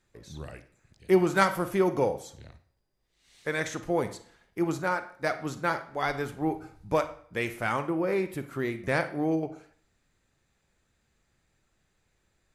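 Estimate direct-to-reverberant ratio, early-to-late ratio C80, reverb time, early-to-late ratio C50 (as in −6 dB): 11.0 dB, 18.0 dB, 0.50 s, 13.0 dB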